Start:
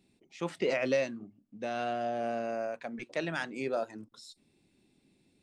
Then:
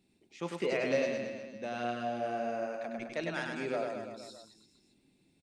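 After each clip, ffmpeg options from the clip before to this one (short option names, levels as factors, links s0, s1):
-af "aecho=1:1:100|210|331|464.1|610.5:0.631|0.398|0.251|0.158|0.1,volume=0.708"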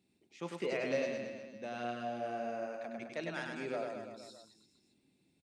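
-af "highpass=57,volume=0.631"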